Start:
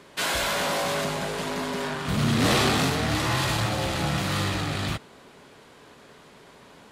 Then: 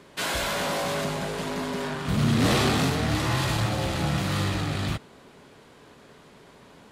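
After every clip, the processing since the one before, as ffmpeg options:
-af "lowshelf=f=400:g=4.5,volume=0.75"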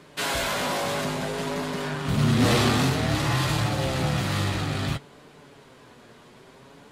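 -af "acontrast=29,flanger=delay=6.5:depth=2.1:regen=54:speed=0.57:shape=triangular"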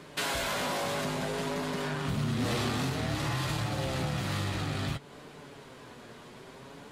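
-af "acompressor=threshold=0.0224:ratio=3,volume=1.19"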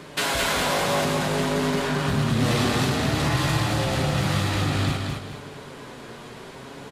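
-af "aecho=1:1:214|428|642|856:0.631|0.208|0.0687|0.0227,aresample=32000,aresample=44100,volume=2.24"

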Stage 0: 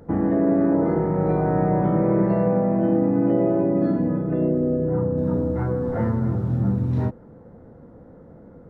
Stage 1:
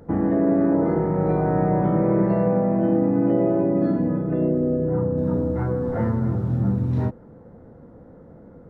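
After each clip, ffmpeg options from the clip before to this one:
-af anull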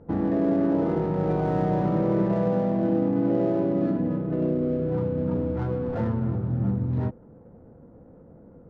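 -af "adynamicsmooth=sensitivity=5.5:basefreq=1300,volume=0.668"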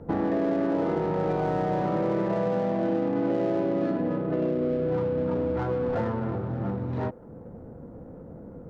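-filter_complex "[0:a]acrossover=split=370|1500[s0][s1][s2];[s0]acompressor=threshold=0.0112:ratio=4[s3];[s1]acompressor=threshold=0.0224:ratio=4[s4];[s2]acompressor=threshold=0.00316:ratio=4[s5];[s3][s4][s5]amix=inputs=3:normalize=0,volume=2.11"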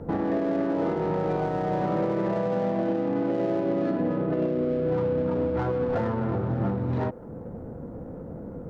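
-af "alimiter=limit=0.0708:level=0:latency=1:release=130,volume=1.78"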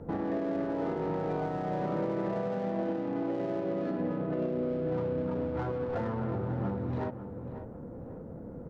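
-filter_complex "[0:a]asplit=2[s0][s1];[s1]adelay=545,lowpass=f=2000:p=1,volume=0.299,asplit=2[s2][s3];[s3]adelay=545,lowpass=f=2000:p=1,volume=0.41,asplit=2[s4][s5];[s5]adelay=545,lowpass=f=2000:p=1,volume=0.41,asplit=2[s6][s7];[s7]adelay=545,lowpass=f=2000:p=1,volume=0.41[s8];[s0][s2][s4][s6][s8]amix=inputs=5:normalize=0,volume=0.501"

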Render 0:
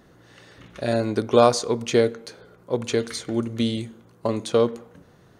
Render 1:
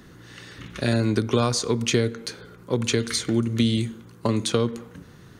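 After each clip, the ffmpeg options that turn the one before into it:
-filter_complex "[0:a]equalizer=f=650:w=1.3:g=-11,acrossover=split=130[s0][s1];[s1]acompressor=threshold=0.0398:ratio=4[s2];[s0][s2]amix=inputs=2:normalize=0,volume=2.51"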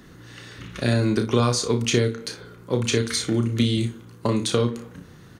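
-af "aecho=1:1:33|60:0.422|0.211"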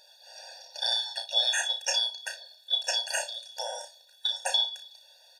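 -af "afftfilt=real='real(if(lt(b,272),68*(eq(floor(b/68),0)*2+eq(floor(b/68),1)*3+eq(floor(b/68),2)*0+eq(floor(b/68),3)*1)+mod(b,68),b),0)':imag='imag(if(lt(b,272),68*(eq(floor(b/68),0)*2+eq(floor(b/68),1)*3+eq(floor(b/68),2)*0+eq(floor(b/68),3)*1)+mod(b,68),b),0)':win_size=2048:overlap=0.75,afftfilt=real='re*eq(mod(floor(b*sr/1024/480),2),1)':imag='im*eq(mod(floor(b*sr/1024/480),2),1)':win_size=1024:overlap=0.75"

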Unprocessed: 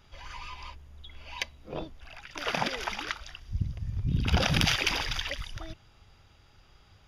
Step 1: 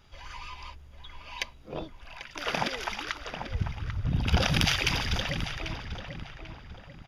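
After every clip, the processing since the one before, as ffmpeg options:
-filter_complex "[0:a]asplit=2[s0][s1];[s1]adelay=792,lowpass=f=2300:p=1,volume=0.422,asplit=2[s2][s3];[s3]adelay=792,lowpass=f=2300:p=1,volume=0.43,asplit=2[s4][s5];[s5]adelay=792,lowpass=f=2300:p=1,volume=0.43,asplit=2[s6][s7];[s7]adelay=792,lowpass=f=2300:p=1,volume=0.43,asplit=2[s8][s9];[s9]adelay=792,lowpass=f=2300:p=1,volume=0.43[s10];[s0][s2][s4][s6][s8][s10]amix=inputs=6:normalize=0"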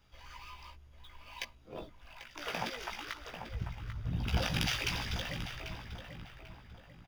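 -filter_complex "[0:a]acrossover=split=370|1500[s0][s1][s2];[s2]acrusher=bits=3:mode=log:mix=0:aa=0.000001[s3];[s0][s1][s3]amix=inputs=3:normalize=0,asplit=2[s4][s5];[s5]adelay=17,volume=0.631[s6];[s4][s6]amix=inputs=2:normalize=0,volume=0.355"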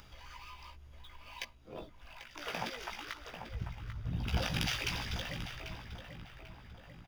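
-af "acompressor=mode=upward:threshold=0.00631:ratio=2.5,volume=0.841"

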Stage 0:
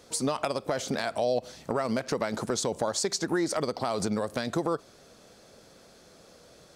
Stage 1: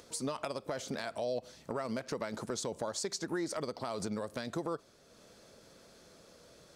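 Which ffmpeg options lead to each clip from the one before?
-af "acompressor=mode=upward:threshold=0.00708:ratio=2.5,bandreject=f=760:w=12,volume=0.398"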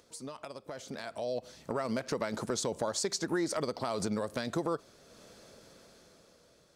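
-af "dynaudnorm=f=290:g=9:m=3.55,volume=0.447"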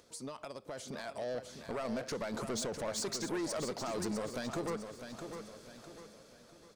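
-af "asoftclip=type=tanh:threshold=0.0237,aecho=1:1:653|1306|1959|2612|3265:0.398|0.159|0.0637|0.0255|0.0102"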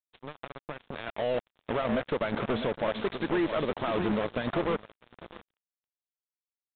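-af "acrusher=bits=5:mix=0:aa=0.5,volume=2.37" -ar 8000 -c:a pcm_mulaw

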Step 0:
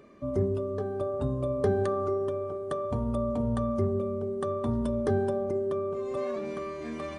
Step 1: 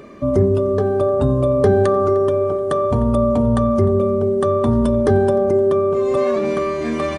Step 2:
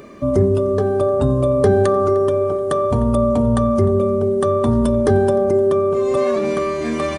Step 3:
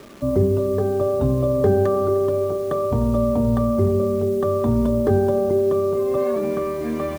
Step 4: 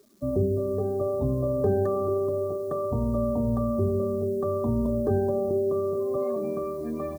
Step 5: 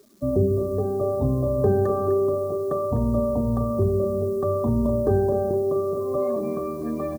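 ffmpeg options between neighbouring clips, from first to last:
-filter_complex "[0:a]asplit=2[s0][s1];[s1]alimiter=level_in=1.19:limit=0.0631:level=0:latency=1,volume=0.841,volume=1[s2];[s0][s2]amix=inputs=2:normalize=0,asplit=2[s3][s4];[s4]adelay=303.2,volume=0.126,highshelf=f=4000:g=-6.82[s5];[s3][s5]amix=inputs=2:normalize=0,volume=2.66"
-af "highshelf=f=6200:g=7.5"
-filter_complex "[0:a]lowpass=f=1000:p=1,acrossover=split=230[s0][s1];[s1]acrusher=bits=6:mix=0:aa=0.000001[s2];[s0][s2]amix=inputs=2:normalize=0,volume=0.75"
-af "afftdn=nr=20:nf=-29,aexciter=amount=6:drive=2.6:freq=3900,volume=0.473"
-af "aecho=1:1:251:0.335,volume=1.58"

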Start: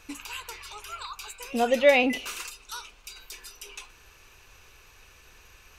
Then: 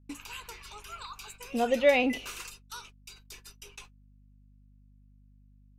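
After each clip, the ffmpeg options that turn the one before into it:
-af "agate=range=0.00708:threshold=0.00631:ratio=16:detection=peak,aeval=exprs='val(0)+0.00158*(sin(2*PI*50*n/s)+sin(2*PI*2*50*n/s)/2+sin(2*PI*3*50*n/s)/3+sin(2*PI*4*50*n/s)/4+sin(2*PI*5*50*n/s)/5)':c=same,lowshelf=f=470:g=4,volume=0.562"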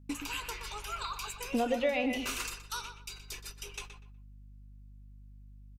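-filter_complex "[0:a]acompressor=threshold=0.0282:ratio=12,asplit=2[s0][s1];[s1]adelay=122,lowpass=f=2800:p=1,volume=0.422,asplit=2[s2][s3];[s3]adelay=122,lowpass=f=2800:p=1,volume=0.26,asplit=2[s4][s5];[s5]adelay=122,lowpass=f=2800:p=1,volume=0.26[s6];[s0][s2][s4][s6]amix=inputs=4:normalize=0,volume=1.68"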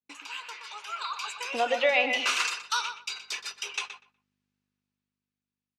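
-af "agate=range=0.0224:threshold=0.00501:ratio=3:detection=peak,dynaudnorm=f=210:g=13:m=3.98,highpass=770,lowpass=5300"

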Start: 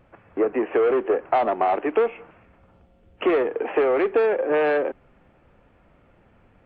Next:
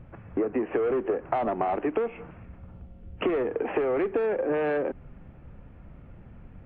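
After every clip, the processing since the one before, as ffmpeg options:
-af "bass=f=250:g=14,treble=f=4000:g=-10,bandreject=f=50:t=h:w=6,bandreject=f=100:t=h:w=6,acompressor=threshold=0.0631:ratio=6"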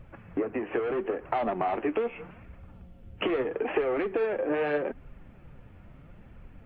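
-af "highshelf=f=2500:g=10.5,flanger=delay=1.5:depth=8.9:regen=50:speed=0.78:shape=triangular,volume=1.19"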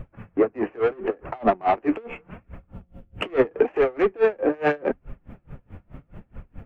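-filter_complex "[0:a]asplit=2[s0][s1];[s1]adynamicsmooth=sensitivity=3:basefreq=2500,volume=1[s2];[s0][s2]amix=inputs=2:normalize=0,aeval=exprs='val(0)*pow(10,-30*(0.5-0.5*cos(2*PI*4.7*n/s))/20)':c=same,volume=2.24"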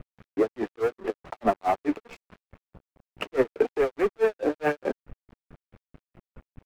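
-af "aeval=exprs='sgn(val(0))*max(abs(val(0))-0.0141,0)':c=same,volume=0.708"

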